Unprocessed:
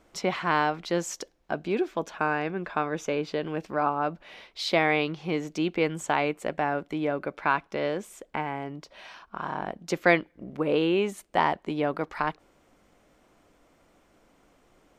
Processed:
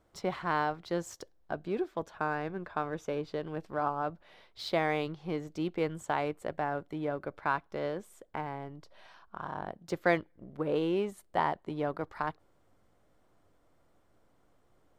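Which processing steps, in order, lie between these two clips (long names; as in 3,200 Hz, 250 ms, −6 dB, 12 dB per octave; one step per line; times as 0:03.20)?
in parallel at −7 dB: slack as between gear wheels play −27 dBFS
on the sum: graphic EQ with 15 bands 100 Hz +9 dB, 250 Hz −3 dB, 2,500 Hz −7 dB, 6,300 Hz −5 dB
level −8 dB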